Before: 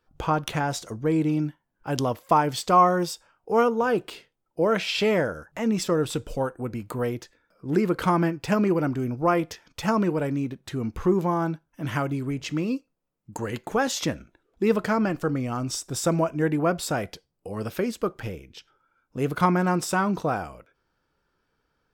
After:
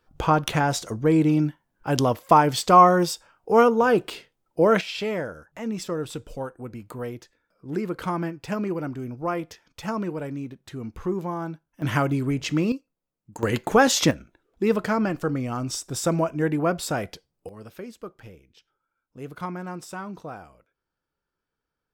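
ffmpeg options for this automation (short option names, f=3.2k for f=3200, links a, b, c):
-af "asetnsamples=n=441:p=0,asendcmd='4.81 volume volume -5.5dB;11.82 volume volume 4dB;12.72 volume volume -4.5dB;13.43 volume volume 7dB;14.11 volume volume 0dB;17.49 volume volume -11.5dB',volume=4dB"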